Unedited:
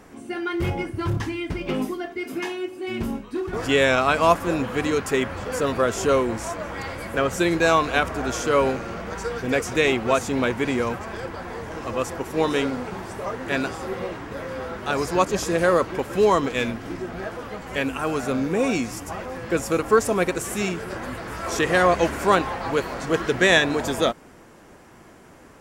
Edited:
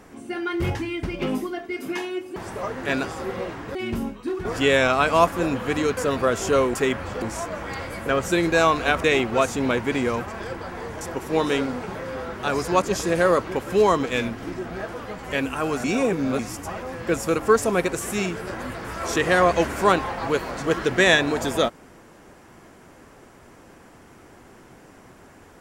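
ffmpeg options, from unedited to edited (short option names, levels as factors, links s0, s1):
-filter_complex "[0:a]asplit=12[s0][s1][s2][s3][s4][s5][s6][s7][s8][s9][s10][s11];[s0]atrim=end=0.752[s12];[s1]atrim=start=1.218:end=2.832[s13];[s2]atrim=start=12.988:end=14.382[s14];[s3]atrim=start=2.828:end=5.052[s15];[s4]atrim=start=5.528:end=6.302[s16];[s5]atrim=start=5.048:end=5.532[s17];[s6]atrim=start=6.298:end=8.122[s18];[s7]atrim=start=9.768:end=11.742[s19];[s8]atrim=start=12.048:end=12.992[s20];[s9]atrim=start=14.378:end=18.272[s21];[s10]atrim=start=18.268:end=18.822,asetpts=PTS-STARTPTS,areverse[s22];[s11]atrim=start=18.818[s23];[s12][s13]acrossfade=d=0.004:c1=hsin:c2=hsin[s24];[s24][s14]acrossfade=d=0.004:c1=hsin:c2=hsin[s25];[s25][s15]acrossfade=d=0.004:c1=hsin:c2=hsin[s26];[s26][s16]acrossfade=d=0.004:c1=hsin:c2=hsin[s27];[s27][s17]acrossfade=d=0.004:c1=hsin:c2=hsin[s28];[s28][s18]acrossfade=d=0.004:c1=hsin:c2=hsin[s29];[s29][s19]acrossfade=d=0.004:c1=hsin:c2=hsin[s30];[s30][s20]acrossfade=d=0.004:c1=hsin:c2=hsin[s31];[s31][s21]acrossfade=d=0.004:c1=hsin:c2=hsin[s32];[s32][s22]acrossfade=d=0.004:c1=hsin:c2=hsin[s33];[s33][s23]acrossfade=d=0.004:c1=hsin:c2=hsin"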